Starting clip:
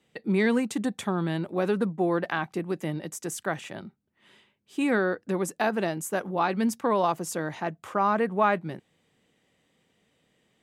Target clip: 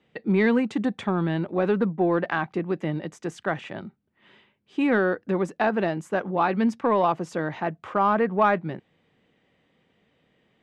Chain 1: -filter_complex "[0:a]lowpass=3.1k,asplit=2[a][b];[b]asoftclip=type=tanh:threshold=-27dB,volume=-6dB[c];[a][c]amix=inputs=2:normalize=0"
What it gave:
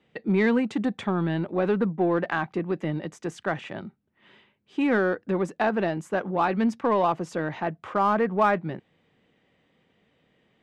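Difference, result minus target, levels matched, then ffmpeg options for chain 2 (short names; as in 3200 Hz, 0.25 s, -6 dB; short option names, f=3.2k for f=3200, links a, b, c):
soft clip: distortion +8 dB
-filter_complex "[0:a]lowpass=3.1k,asplit=2[a][b];[b]asoftclip=type=tanh:threshold=-18.5dB,volume=-6dB[c];[a][c]amix=inputs=2:normalize=0"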